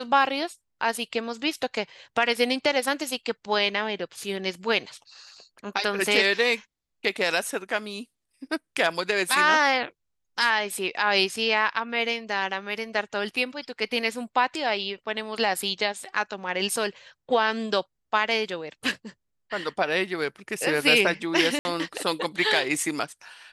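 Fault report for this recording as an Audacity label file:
21.590000	21.650000	gap 60 ms

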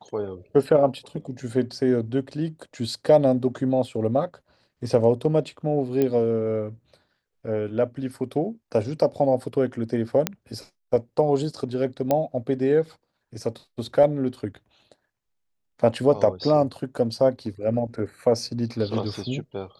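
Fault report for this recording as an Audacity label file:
6.020000	6.020000	pop -12 dBFS
10.270000	10.270000	pop -6 dBFS
12.110000	12.110000	pop -9 dBFS

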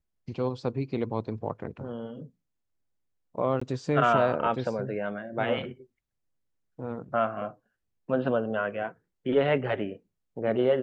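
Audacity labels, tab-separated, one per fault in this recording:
3.600000	3.620000	gap 15 ms

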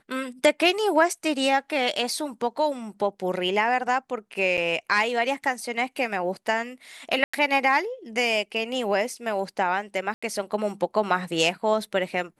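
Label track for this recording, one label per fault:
4.570000	4.580000	gap 8 ms
7.240000	7.330000	gap 95 ms
10.140000	10.220000	gap 85 ms

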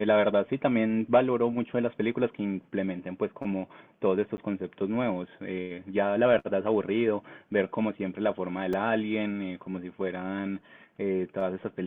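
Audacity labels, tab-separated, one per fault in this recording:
4.370000	4.380000	gap 10 ms
8.730000	8.730000	gap 3.8 ms

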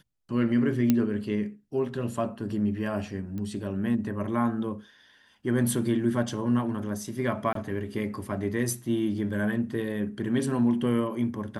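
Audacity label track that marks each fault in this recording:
0.900000	0.900000	pop -9 dBFS
3.380000	3.380000	pop -25 dBFS
7.530000	7.550000	gap 23 ms

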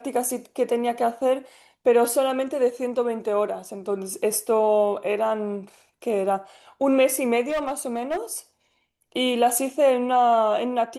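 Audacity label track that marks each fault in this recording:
7.480000	8.170000	clipped -21.5 dBFS

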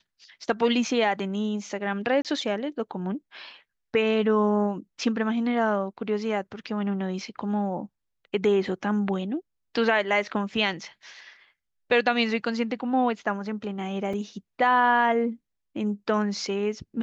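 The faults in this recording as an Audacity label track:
2.220000	2.250000	gap 27 ms
14.130000	14.130000	gap 4 ms

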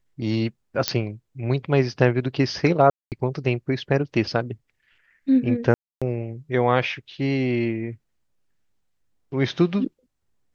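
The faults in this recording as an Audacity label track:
0.880000	0.880000	pop -3 dBFS
2.900000	3.120000	gap 0.218 s
5.740000	6.020000	gap 0.276 s

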